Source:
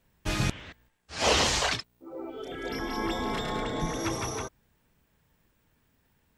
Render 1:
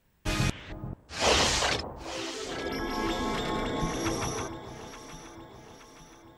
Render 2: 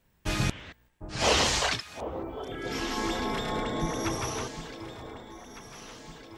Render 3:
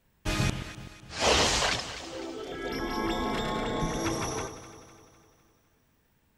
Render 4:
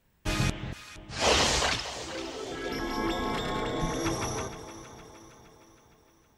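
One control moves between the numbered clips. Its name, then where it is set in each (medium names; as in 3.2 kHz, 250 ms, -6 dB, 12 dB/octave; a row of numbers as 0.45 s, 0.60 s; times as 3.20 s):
echo whose repeats swap between lows and highs, time: 436 ms, 753 ms, 126 ms, 232 ms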